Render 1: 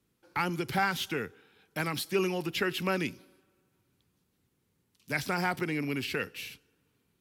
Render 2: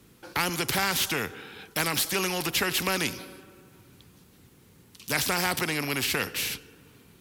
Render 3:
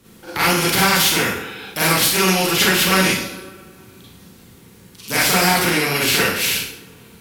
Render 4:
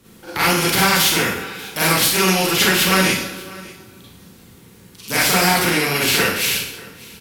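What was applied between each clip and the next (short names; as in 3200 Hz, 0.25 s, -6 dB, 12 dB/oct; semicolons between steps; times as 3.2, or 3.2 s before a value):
spectral compressor 2:1; gain +4.5 dB
Schroeder reverb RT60 0.57 s, combs from 33 ms, DRR -8 dB; gain +2.5 dB
echo 0.59 s -21.5 dB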